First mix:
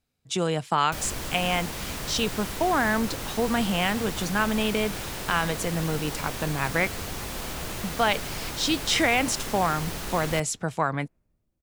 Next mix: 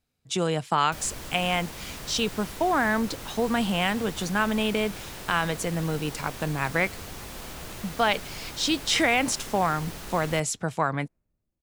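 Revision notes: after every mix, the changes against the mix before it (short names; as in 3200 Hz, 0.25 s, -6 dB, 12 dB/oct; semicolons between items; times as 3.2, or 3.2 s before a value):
background -5.5 dB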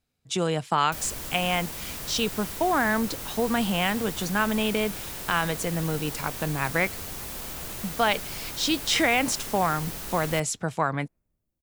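background: add high shelf 8500 Hz +10.5 dB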